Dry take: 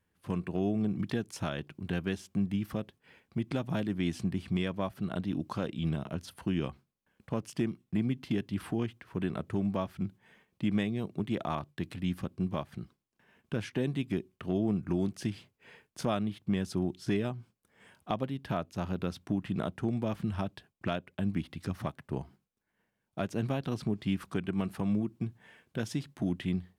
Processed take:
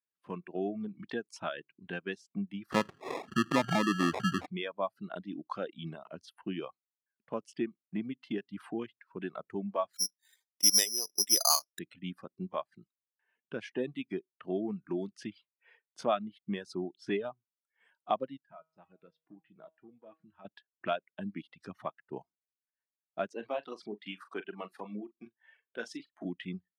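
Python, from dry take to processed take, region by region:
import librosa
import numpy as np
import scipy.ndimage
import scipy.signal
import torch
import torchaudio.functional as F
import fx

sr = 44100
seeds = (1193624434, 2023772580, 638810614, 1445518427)

y = fx.chain(x, sr, fx.low_shelf(hz=400.0, db=6.5),
    fx.sample_hold(seeds[0], rate_hz=1500.0, jitter_pct=0),
    fx.env_flatten(amount_pct=70), at=(2.72, 4.46))
y = fx.chain(y, sr, fx.highpass(hz=290.0, slope=12),
    fx.resample_bad(factor=8, down='filtered', up='zero_stuff'), at=(9.93, 11.79))
y = fx.chain(y, sr, fx.clip_hard(threshold_db=-22.0),
    fx.air_absorb(metres=150.0),
    fx.comb_fb(f0_hz=160.0, decay_s=0.8, harmonics='all', damping=0.0, mix_pct=80), at=(18.37, 20.45))
y = fx.chain(y, sr, fx.highpass(hz=270.0, slope=12),
    fx.doubler(ms=43.0, db=-7.0), at=(23.33, 26.25))
y = fx.dereverb_blind(y, sr, rt60_s=0.85)
y = fx.weighting(y, sr, curve='A')
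y = fx.spectral_expand(y, sr, expansion=1.5)
y = y * 10.0 ** (2.0 / 20.0)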